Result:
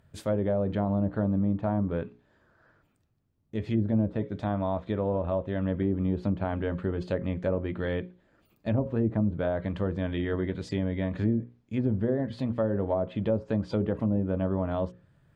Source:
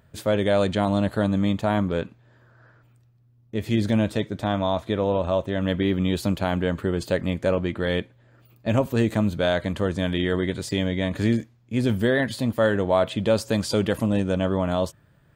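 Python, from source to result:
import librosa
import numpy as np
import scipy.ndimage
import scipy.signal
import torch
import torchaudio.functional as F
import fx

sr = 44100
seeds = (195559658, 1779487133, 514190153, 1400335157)

y = fx.low_shelf(x, sr, hz=300.0, db=4.5)
y = fx.hum_notches(y, sr, base_hz=60, count=9)
y = fx.env_lowpass_down(y, sr, base_hz=650.0, full_db=-15.0)
y = y * librosa.db_to_amplitude(-6.5)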